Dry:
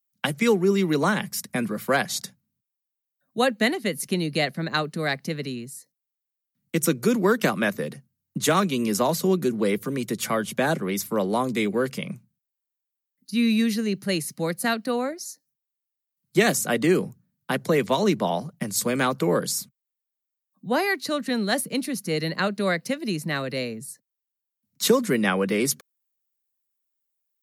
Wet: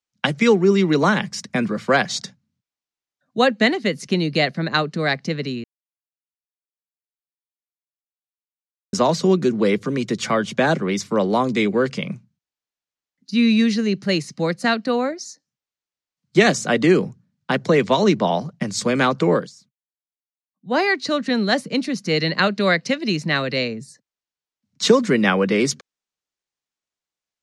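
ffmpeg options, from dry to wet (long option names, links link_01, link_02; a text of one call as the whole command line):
ffmpeg -i in.wav -filter_complex "[0:a]asettb=1/sr,asplit=3[link_01][link_02][link_03];[link_01]atrim=end=22.054[link_04];[link_02]atrim=start=22.05:end=23.68,asetpts=PTS-STARTPTS,afade=type=in:duration=0.004:curve=qsin,afade=type=out:start_time=1.626:duration=0.004:curve=qsin,equalizer=frequency=3200:width=0.57:gain=4[link_05];[link_03]atrim=start=23.676[link_06];[link_04][link_05]acrossfade=duration=0.004:curve1=hsin:curve2=qsin[link_07];[link_07][link_06]acrossfade=duration=0.004:curve1=qsin:curve2=hsin,asplit=5[link_08][link_09][link_10][link_11][link_12];[link_08]atrim=end=5.64,asetpts=PTS-STARTPTS,afade=type=out:start_time=5.636:duration=0.004:curve=hsin[link_13];[link_09]atrim=start=5.64:end=8.93,asetpts=PTS-STARTPTS,volume=0[link_14];[link_10]atrim=start=8.93:end=19.5,asetpts=PTS-STARTPTS,afade=type=in:duration=0.004:curve=hsin,afade=type=out:start_time=10.4:duration=0.17:silence=0.1[link_15];[link_11]atrim=start=19.5:end=20.62,asetpts=PTS-STARTPTS,volume=-20dB[link_16];[link_12]atrim=start=20.62,asetpts=PTS-STARTPTS,afade=type=in:duration=0.17:silence=0.1[link_17];[link_13][link_14][link_15][link_16][link_17]concat=n=5:v=0:a=1,lowpass=frequency=6500:width=0.5412,lowpass=frequency=6500:width=1.3066,volume=5dB" out.wav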